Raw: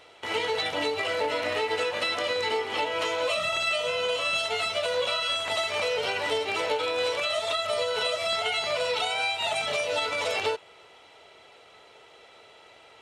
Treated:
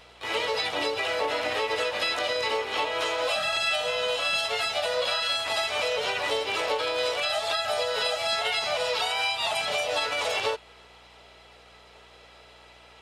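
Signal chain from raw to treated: low shelf 360 Hz -4 dB; harmoniser +4 st -6 dB; hum 60 Hz, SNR 33 dB

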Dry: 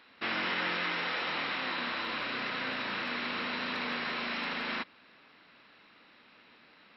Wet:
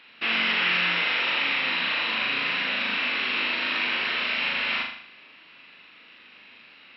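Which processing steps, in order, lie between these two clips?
bell 2700 Hz +12 dB 0.86 oct; flutter echo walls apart 6.8 m, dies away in 0.63 s

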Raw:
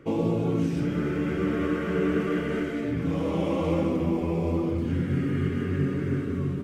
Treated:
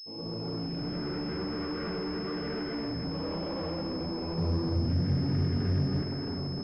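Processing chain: opening faded in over 1.43 s; compressor, threshold -29 dBFS, peak gain reduction 8.5 dB; soft clip -34.5 dBFS, distortion -10 dB; 4.38–6.02 bell 100 Hz +10.5 dB 1.8 oct; pulse-width modulation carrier 5200 Hz; gain +3.5 dB

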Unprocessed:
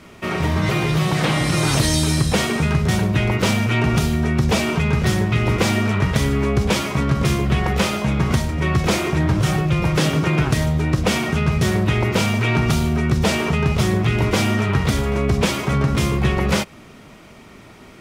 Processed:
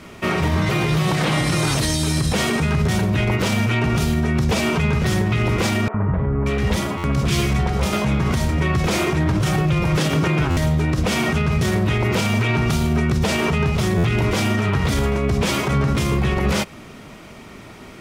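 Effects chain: limiter -14.5 dBFS, peak gain reduction 9.5 dB; 5.88–7.93 three bands offset in time mids, lows, highs 60/580 ms, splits 380/1400 Hz; stuck buffer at 6.97/10.5/13.97, samples 512, times 5; gain +3.5 dB

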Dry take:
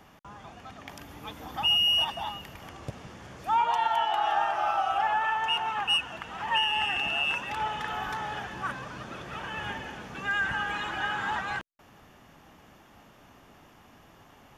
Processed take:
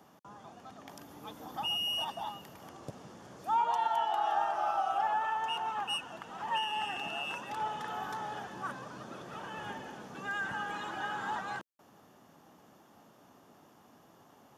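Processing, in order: HPF 160 Hz 12 dB/oct; bell 2300 Hz -10 dB 1.2 oct; gain -2.5 dB

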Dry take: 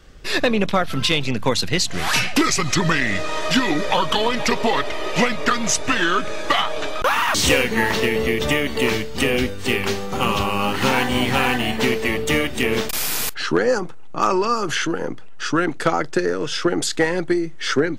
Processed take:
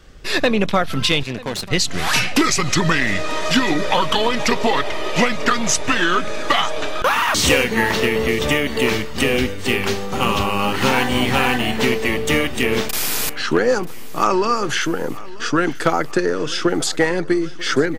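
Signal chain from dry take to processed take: 1.23–1.71 tube stage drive 21 dB, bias 0.45; feedback echo 0.94 s, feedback 59%, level -20 dB; gain +1.5 dB

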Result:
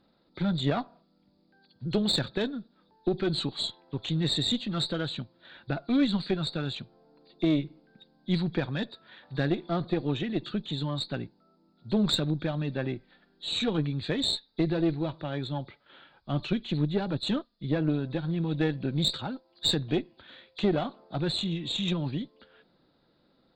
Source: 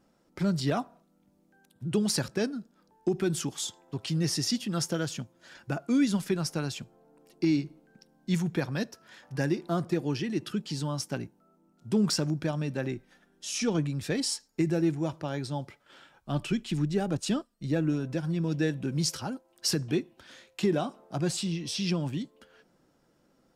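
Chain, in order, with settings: nonlinear frequency compression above 3300 Hz 4:1; added harmonics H 4 -17 dB, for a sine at -14 dBFS

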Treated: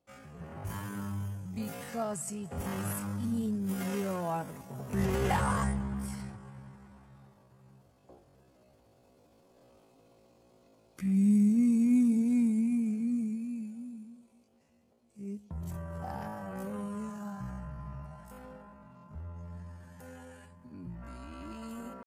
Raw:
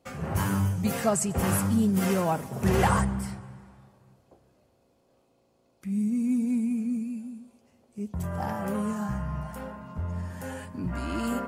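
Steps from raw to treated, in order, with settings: Doppler pass-by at 5.26, 8 m/s, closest 5.4 m; tempo 0.52×; gain +5.5 dB

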